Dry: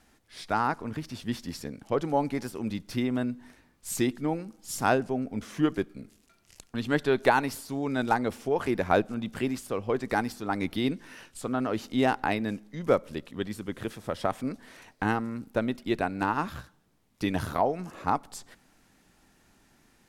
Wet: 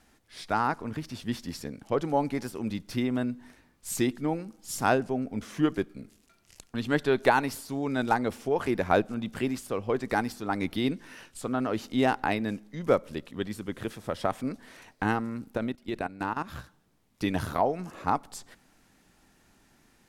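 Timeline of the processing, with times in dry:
0:15.57–0:16.53: output level in coarse steps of 15 dB

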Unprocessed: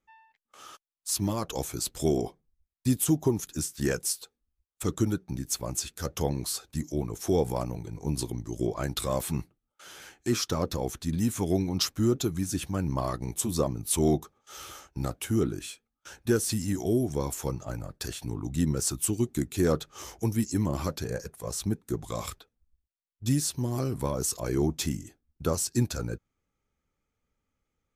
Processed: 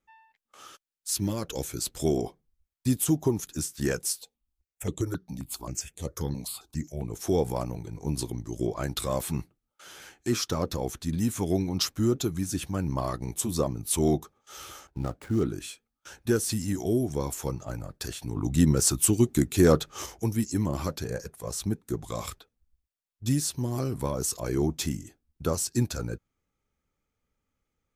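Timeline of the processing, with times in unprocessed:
0:00.68–0:01.82: gain on a spectral selection 600–1,300 Hz −6 dB
0:04.21–0:07.11: step-sequenced phaser 7.5 Hz 360–5,200 Hz
0:14.87–0:15.43: running median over 15 samples
0:18.36–0:20.06: clip gain +5.5 dB

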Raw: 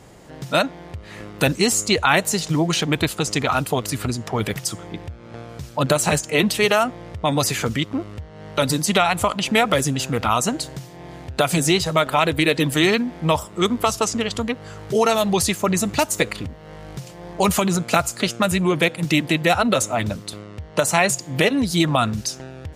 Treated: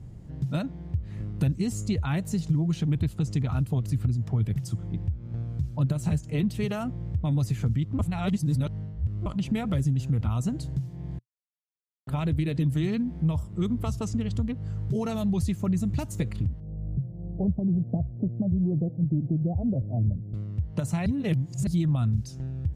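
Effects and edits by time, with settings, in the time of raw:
0:07.99–0:09.26: reverse
0:11.19–0:12.07: silence
0:16.60–0:20.34: Butterworth low-pass 730 Hz 48 dB per octave
0:21.06–0:21.67: reverse
whole clip: drawn EQ curve 120 Hz 0 dB, 490 Hz −23 dB, 1,200 Hz −27 dB; downward compressor 2.5 to 1, threshold −33 dBFS; level +9 dB

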